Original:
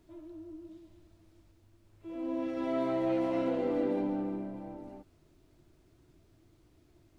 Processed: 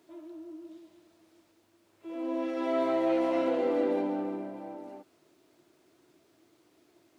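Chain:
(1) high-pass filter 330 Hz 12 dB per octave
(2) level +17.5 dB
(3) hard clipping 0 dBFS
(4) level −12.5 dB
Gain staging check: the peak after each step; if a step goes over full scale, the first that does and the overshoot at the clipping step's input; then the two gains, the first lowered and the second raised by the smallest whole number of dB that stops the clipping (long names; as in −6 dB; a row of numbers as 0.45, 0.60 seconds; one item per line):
−22.0, −4.5, −4.5, −17.0 dBFS
no step passes full scale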